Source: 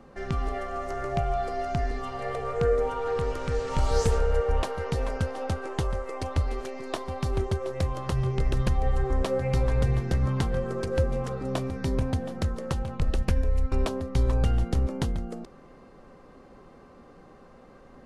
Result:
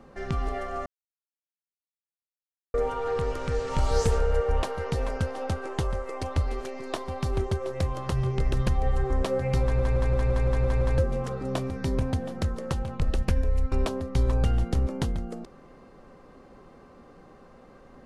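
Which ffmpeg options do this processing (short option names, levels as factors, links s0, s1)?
-filter_complex "[0:a]asplit=11[s0][s1][s2][s3][s4][s5][s6][s7][s8][s9][s10];[s0]atrim=end=0.86,asetpts=PTS-STARTPTS,afade=t=out:st=0.856:d=0.004:c=hsin[s11];[s1]atrim=start=0.86:end=2.74,asetpts=PTS-STARTPTS,volume=0[s12];[s2]atrim=start=2.74:end=9.792,asetpts=PTS-STARTPTS,afade=t=in:d=0.004:c=hsin[s13];[s3]atrim=start=9.618:end=9.792[s14];[s4]atrim=start=9.618:end=9.792[s15];[s5]atrim=start=9.618:end=9.792[s16];[s6]atrim=start=9.618:end=9.792[s17];[s7]atrim=start=9.618:end=9.792[s18];[s8]atrim=start=9.618:end=9.792[s19];[s9]atrim=start=9.618:end=9.792[s20];[s10]atrim=start=10.978[s21];[s11][s12][s13]concat=n=3:v=0:a=1[s22];[s22][s14]acrossfade=d=0.004:c1=hsin:c2=hsin[s23];[s23][s15]acrossfade=d=0.004:c1=hsin:c2=hsin[s24];[s24][s16]acrossfade=d=0.004:c1=hsin:c2=hsin[s25];[s25][s17]acrossfade=d=0.004:c1=hsin:c2=hsin[s26];[s26][s18]acrossfade=d=0.004:c1=hsin:c2=hsin[s27];[s27][s19]acrossfade=d=0.004:c1=hsin:c2=hsin[s28];[s28][s20]acrossfade=d=0.004:c1=hsin:c2=hsin[s29];[s29][s21]acrossfade=d=0.004:c1=hsin:c2=hsin"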